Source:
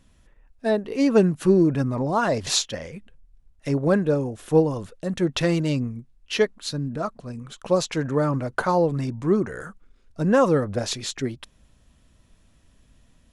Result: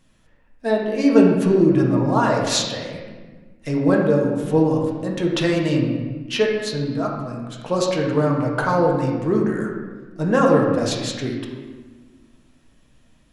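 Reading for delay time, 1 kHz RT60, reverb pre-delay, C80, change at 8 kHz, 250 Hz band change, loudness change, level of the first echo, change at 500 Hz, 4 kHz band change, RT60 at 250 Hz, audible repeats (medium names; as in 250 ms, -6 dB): no echo, 1.4 s, 4 ms, 4.5 dB, +0.5 dB, +4.5 dB, +3.5 dB, no echo, +3.0 dB, +2.5 dB, 2.1 s, no echo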